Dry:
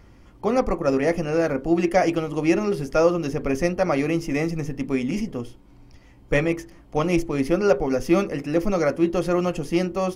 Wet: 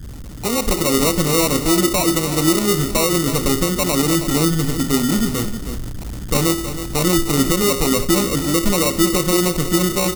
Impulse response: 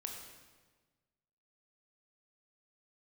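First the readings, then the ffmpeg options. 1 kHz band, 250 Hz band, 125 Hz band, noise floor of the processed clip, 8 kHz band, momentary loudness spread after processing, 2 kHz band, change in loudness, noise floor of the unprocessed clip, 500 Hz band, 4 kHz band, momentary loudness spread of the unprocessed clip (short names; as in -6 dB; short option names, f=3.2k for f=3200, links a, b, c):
+4.0 dB, +5.0 dB, +7.0 dB, -30 dBFS, +21.0 dB, 7 LU, +4.5 dB, +5.5 dB, -50 dBFS, +1.0 dB, +17.5 dB, 7 LU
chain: -filter_complex "[0:a]aeval=exprs='val(0)+0.5*0.0299*sgn(val(0))':c=same,anlmdn=6.31,acrossover=split=500|4600[a][b][c];[a]adynamicequalizer=threshold=0.02:dfrequency=360:dqfactor=5.8:tfrequency=360:tqfactor=5.8:attack=5:release=100:ratio=0.375:range=2.5:mode=boostabove:tftype=bell[d];[c]acompressor=threshold=-53dB:ratio=6[e];[d][b][e]amix=inputs=3:normalize=0,acrusher=samples=27:mix=1:aa=0.000001,aeval=exprs='0.531*(cos(1*acos(clip(val(0)/0.531,-1,1)))-cos(1*PI/2))+0.00596*(cos(7*acos(clip(val(0)/0.531,-1,1)))-cos(7*PI/2))':c=same,bass=f=250:g=5,treble=f=4k:g=11,aeval=exprs='val(0)+0.0112*(sin(2*PI*60*n/s)+sin(2*PI*2*60*n/s)/2+sin(2*PI*3*60*n/s)/3+sin(2*PI*4*60*n/s)/4+sin(2*PI*5*60*n/s)/5)':c=same,alimiter=limit=-5.5dB:level=0:latency=1:release=95,aecho=1:1:320:0.282,dynaudnorm=f=240:g=5:m=11.5dB,volume=-1dB"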